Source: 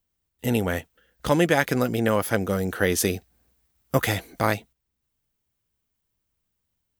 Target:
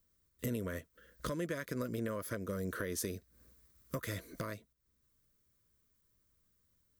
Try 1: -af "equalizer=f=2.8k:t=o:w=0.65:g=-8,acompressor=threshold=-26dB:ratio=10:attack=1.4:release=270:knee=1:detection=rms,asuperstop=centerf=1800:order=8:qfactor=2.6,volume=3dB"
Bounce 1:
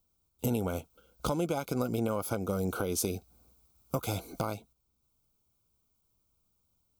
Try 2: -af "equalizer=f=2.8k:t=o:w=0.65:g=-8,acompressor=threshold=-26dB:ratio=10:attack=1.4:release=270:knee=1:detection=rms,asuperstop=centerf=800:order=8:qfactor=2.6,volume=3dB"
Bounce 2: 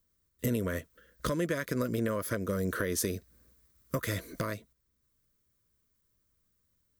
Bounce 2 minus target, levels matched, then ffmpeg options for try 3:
compressor: peak gain reduction -7 dB
-af "equalizer=f=2.8k:t=o:w=0.65:g=-8,acompressor=threshold=-33.5dB:ratio=10:attack=1.4:release=270:knee=1:detection=rms,asuperstop=centerf=800:order=8:qfactor=2.6,volume=3dB"

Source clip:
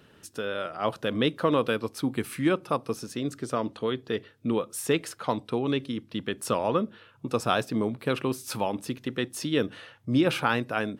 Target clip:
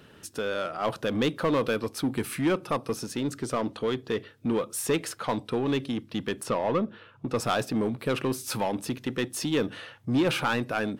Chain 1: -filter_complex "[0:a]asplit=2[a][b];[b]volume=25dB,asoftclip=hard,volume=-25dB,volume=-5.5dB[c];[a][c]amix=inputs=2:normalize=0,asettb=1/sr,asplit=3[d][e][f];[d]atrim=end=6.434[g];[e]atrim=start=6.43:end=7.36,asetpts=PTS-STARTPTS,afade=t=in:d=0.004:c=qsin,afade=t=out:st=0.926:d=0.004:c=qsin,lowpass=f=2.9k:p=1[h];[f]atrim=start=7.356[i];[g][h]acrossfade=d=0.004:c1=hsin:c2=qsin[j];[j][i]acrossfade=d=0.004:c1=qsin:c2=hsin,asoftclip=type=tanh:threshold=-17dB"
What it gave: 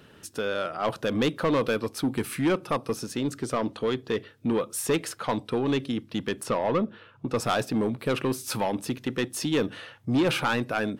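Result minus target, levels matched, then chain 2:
overloaded stage: distortion -5 dB
-filter_complex "[0:a]asplit=2[a][b];[b]volume=34dB,asoftclip=hard,volume=-34dB,volume=-5.5dB[c];[a][c]amix=inputs=2:normalize=0,asettb=1/sr,asplit=3[d][e][f];[d]atrim=end=6.434[g];[e]atrim=start=6.43:end=7.36,asetpts=PTS-STARTPTS,afade=t=in:d=0.004:c=qsin,afade=t=out:st=0.926:d=0.004:c=qsin,lowpass=f=2.9k:p=1[h];[f]atrim=start=7.356[i];[g][h]acrossfade=d=0.004:c1=hsin:c2=qsin[j];[j][i]acrossfade=d=0.004:c1=qsin:c2=hsin,asoftclip=type=tanh:threshold=-17dB"

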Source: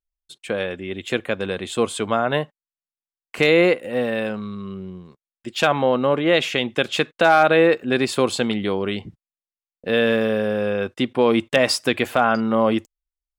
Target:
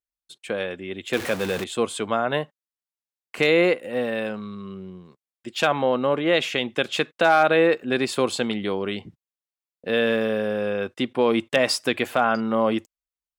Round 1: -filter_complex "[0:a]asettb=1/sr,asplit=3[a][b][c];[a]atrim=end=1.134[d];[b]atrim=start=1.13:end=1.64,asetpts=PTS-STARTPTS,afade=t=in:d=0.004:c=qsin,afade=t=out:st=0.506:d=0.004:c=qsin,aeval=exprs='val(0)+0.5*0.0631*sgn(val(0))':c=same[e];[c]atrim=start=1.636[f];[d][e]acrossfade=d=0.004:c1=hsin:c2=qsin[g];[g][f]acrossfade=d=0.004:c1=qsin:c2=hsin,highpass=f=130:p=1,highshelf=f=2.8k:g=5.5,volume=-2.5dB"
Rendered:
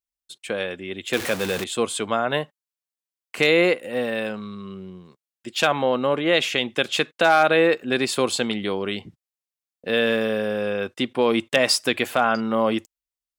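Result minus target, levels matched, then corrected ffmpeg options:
4000 Hz band +2.5 dB
-filter_complex "[0:a]asettb=1/sr,asplit=3[a][b][c];[a]atrim=end=1.134[d];[b]atrim=start=1.13:end=1.64,asetpts=PTS-STARTPTS,afade=t=in:d=0.004:c=qsin,afade=t=out:st=0.506:d=0.004:c=qsin,aeval=exprs='val(0)+0.5*0.0631*sgn(val(0))':c=same[e];[c]atrim=start=1.636[f];[d][e]acrossfade=d=0.004:c1=hsin:c2=qsin[g];[g][f]acrossfade=d=0.004:c1=qsin:c2=hsin,highpass=f=130:p=1,volume=-2.5dB"

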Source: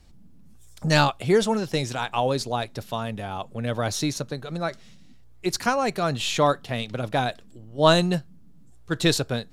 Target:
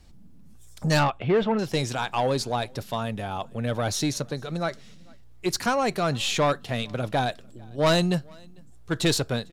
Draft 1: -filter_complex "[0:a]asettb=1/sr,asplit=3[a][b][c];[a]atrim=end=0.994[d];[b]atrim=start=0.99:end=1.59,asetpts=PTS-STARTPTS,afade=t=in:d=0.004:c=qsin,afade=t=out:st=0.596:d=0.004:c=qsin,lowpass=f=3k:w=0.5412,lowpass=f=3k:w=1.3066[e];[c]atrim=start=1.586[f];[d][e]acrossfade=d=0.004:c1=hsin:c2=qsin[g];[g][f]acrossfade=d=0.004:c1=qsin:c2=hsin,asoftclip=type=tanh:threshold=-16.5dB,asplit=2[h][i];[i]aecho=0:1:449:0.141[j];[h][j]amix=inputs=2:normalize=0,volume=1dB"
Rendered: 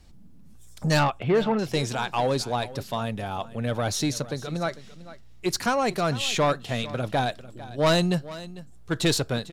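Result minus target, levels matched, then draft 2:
echo-to-direct +11.5 dB
-filter_complex "[0:a]asettb=1/sr,asplit=3[a][b][c];[a]atrim=end=0.994[d];[b]atrim=start=0.99:end=1.59,asetpts=PTS-STARTPTS,afade=t=in:d=0.004:c=qsin,afade=t=out:st=0.596:d=0.004:c=qsin,lowpass=f=3k:w=0.5412,lowpass=f=3k:w=1.3066[e];[c]atrim=start=1.586[f];[d][e]acrossfade=d=0.004:c1=hsin:c2=qsin[g];[g][f]acrossfade=d=0.004:c1=qsin:c2=hsin,asoftclip=type=tanh:threshold=-16.5dB,asplit=2[h][i];[i]aecho=0:1:449:0.0376[j];[h][j]amix=inputs=2:normalize=0,volume=1dB"

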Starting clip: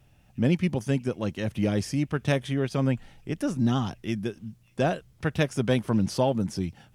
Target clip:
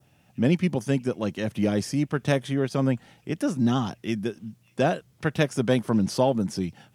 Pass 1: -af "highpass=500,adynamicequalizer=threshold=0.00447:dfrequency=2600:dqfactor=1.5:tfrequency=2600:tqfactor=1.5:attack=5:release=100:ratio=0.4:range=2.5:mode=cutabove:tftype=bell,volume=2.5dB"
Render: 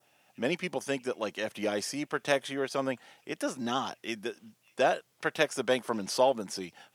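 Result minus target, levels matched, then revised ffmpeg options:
125 Hz band -13.5 dB
-af "highpass=130,adynamicequalizer=threshold=0.00447:dfrequency=2600:dqfactor=1.5:tfrequency=2600:tqfactor=1.5:attack=5:release=100:ratio=0.4:range=2.5:mode=cutabove:tftype=bell,volume=2.5dB"

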